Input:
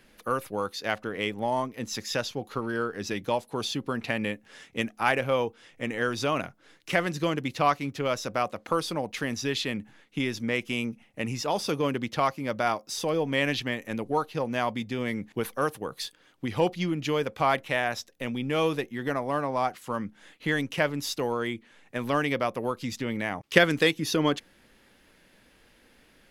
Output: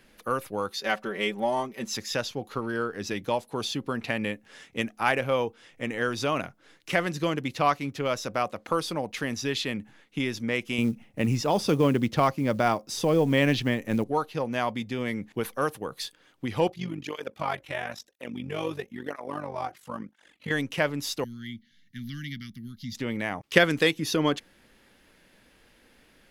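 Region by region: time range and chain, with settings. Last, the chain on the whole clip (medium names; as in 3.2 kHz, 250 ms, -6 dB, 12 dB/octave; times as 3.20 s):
0.70–1.97 s: bass shelf 120 Hz -9.5 dB + comb 5.2 ms, depth 79%
10.78–14.04 s: bass shelf 440 Hz +9 dB + short-mantissa float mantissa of 4-bit
16.67–20.51 s: AM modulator 48 Hz, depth 65% + cancelling through-zero flanger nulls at 1 Hz, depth 4.9 ms
21.24–22.95 s: Chebyshev band-stop 230–2200 Hz, order 3 + static phaser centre 2.5 kHz, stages 6
whole clip: none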